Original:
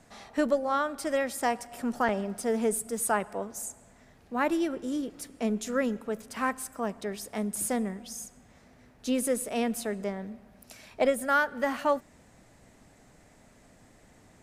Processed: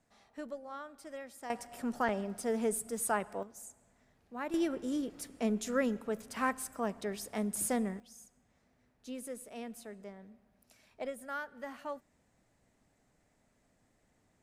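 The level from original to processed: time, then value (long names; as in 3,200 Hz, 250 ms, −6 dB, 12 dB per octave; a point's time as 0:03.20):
−17 dB
from 0:01.50 −5 dB
from 0:03.43 −12 dB
from 0:04.54 −3 dB
from 0:08.00 −15 dB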